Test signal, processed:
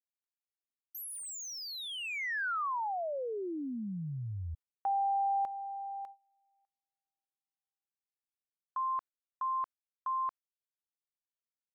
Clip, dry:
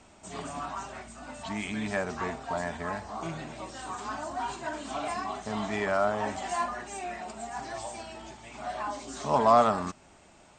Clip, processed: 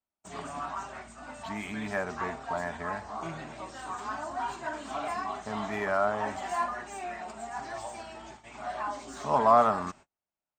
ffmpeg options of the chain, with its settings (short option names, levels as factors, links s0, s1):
-filter_complex "[0:a]agate=range=0.0112:threshold=0.00447:ratio=16:detection=peak,acrossover=split=1700[s0][s1];[s0]crystalizer=i=9.5:c=0[s2];[s1]asoftclip=type=tanh:threshold=0.0141[s3];[s2][s3]amix=inputs=2:normalize=0,volume=0.668"